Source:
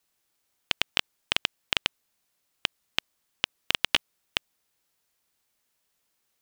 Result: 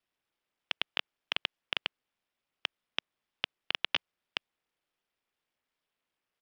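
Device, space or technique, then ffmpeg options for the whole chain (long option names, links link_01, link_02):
Bluetooth headset: -af "highpass=200,aresample=8000,aresample=44100,volume=-6dB" -ar 44100 -c:a sbc -b:a 64k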